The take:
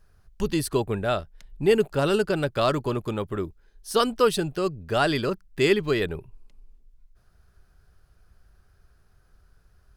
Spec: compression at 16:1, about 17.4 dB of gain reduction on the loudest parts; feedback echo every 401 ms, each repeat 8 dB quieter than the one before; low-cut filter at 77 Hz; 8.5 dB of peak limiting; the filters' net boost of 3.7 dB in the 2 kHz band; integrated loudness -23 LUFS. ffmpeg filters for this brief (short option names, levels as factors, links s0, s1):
-af "highpass=77,equalizer=f=2000:t=o:g=5,acompressor=threshold=0.0251:ratio=16,alimiter=level_in=2:limit=0.0631:level=0:latency=1,volume=0.501,aecho=1:1:401|802|1203|1604|2005:0.398|0.159|0.0637|0.0255|0.0102,volume=7.08"